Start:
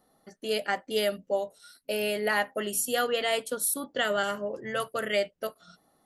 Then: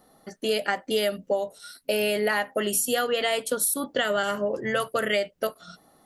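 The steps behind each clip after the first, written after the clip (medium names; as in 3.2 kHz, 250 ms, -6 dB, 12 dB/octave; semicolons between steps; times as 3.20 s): compression, threshold -30 dBFS, peak gain reduction 8.5 dB; trim +8.5 dB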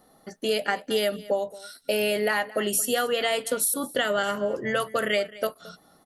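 delay 222 ms -19.5 dB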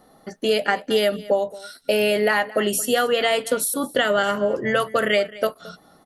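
treble shelf 5.6 kHz -6.5 dB; trim +5.5 dB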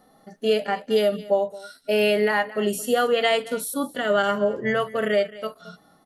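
harmonic-percussive split percussive -16 dB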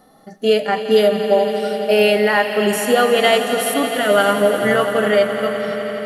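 echo with a slow build-up 85 ms, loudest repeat 5, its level -14 dB; trim +6 dB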